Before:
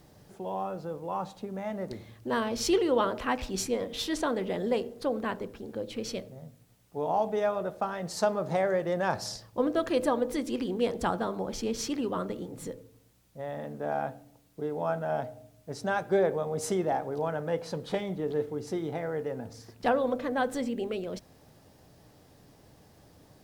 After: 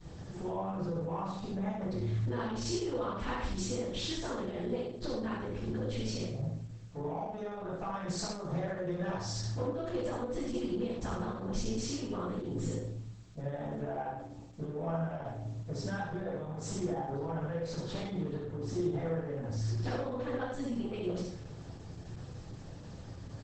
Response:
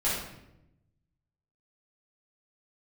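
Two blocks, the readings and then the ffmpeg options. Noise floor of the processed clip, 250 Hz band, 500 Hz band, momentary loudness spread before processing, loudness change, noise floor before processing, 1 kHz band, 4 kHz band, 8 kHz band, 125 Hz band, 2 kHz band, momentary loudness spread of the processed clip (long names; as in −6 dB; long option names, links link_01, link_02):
−47 dBFS, −3.0 dB, −8.0 dB, 11 LU, −5.5 dB, −59 dBFS, −8.0 dB, −4.0 dB, −4.5 dB, +5.0 dB, −8.0 dB, 10 LU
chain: -filter_complex "[0:a]equalizer=frequency=120:width=1.2:gain=7.5,bandreject=frequency=259.8:width_type=h:width=4,bandreject=frequency=519.6:width_type=h:width=4,bandreject=frequency=779.4:width_type=h:width=4,acompressor=threshold=-38dB:ratio=10,asoftclip=type=tanh:threshold=-31.5dB,aexciter=amount=2.1:drive=4.7:freq=9500,aecho=1:1:73|146|219|292|365:0.708|0.255|0.0917|0.033|0.0119[link_01];[1:a]atrim=start_sample=2205,atrim=end_sample=6615,asetrate=83790,aresample=44100[link_02];[link_01][link_02]afir=irnorm=-1:irlink=0" -ar 48000 -c:a libopus -b:a 10k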